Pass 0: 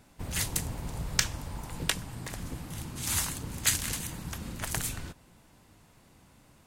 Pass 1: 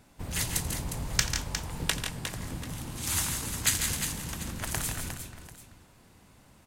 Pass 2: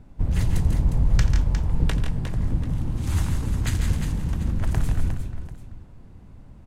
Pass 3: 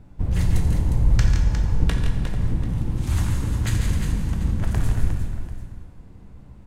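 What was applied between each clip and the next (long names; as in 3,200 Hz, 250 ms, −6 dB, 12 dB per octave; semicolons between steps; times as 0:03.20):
multi-tap delay 87/143/167/357/741 ms −16/−9/−8.5/−8.5/−18 dB
spectral tilt −4 dB per octave
dense smooth reverb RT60 1.7 s, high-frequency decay 0.9×, DRR 4 dB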